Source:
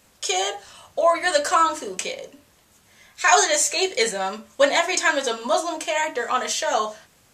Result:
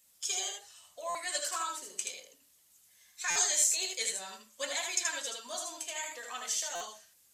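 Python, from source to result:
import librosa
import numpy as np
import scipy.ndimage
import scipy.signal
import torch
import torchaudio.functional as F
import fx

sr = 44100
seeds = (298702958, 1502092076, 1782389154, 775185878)

p1 = fx.spec_quant(x, sr, step_db=15)
p2 = scipy.signal.lfilter([1.0, -0.9], [1.0], p1)
p3 = p2 + fx.echo_single(p2, sr, ms=78, db=-4.0, dry=0)
p4 = fx.buffer_glitch(p3, sr, at_s=(1.09, 3.3, 6.75), block=256, repeats=9)
y = F.gain(torch.from_numpy(p4), -5.0).numpy()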